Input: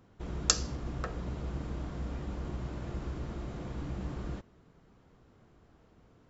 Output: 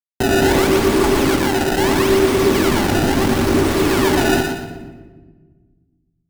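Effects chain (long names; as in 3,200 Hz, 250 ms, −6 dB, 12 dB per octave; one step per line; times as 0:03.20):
0:02.80–0:03.46: low-shelf EQ 100 Hz −11 dB
in parallel at +1 dB: downward compressor, threshold −44 dBFS, peak gain reduction 23 dB
0:01.35–0:01.77: on the sum: tuned comb filter 51 Hz, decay 0.39 s, mix 70%
frequency shifter −450 Hz
sample-and-hold swept by an LFO 23×, swing 160% 0.76 Hz
fuzz pedal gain 45 dB, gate −42 dBFS
feedback echo with a high-pass in the loop 119 ms, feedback 33%, high-pass 370 Hz, level −5 dB
on a send at −7.5 dB: convolution reverb RT60 1.4 s, pre-delay 3 ms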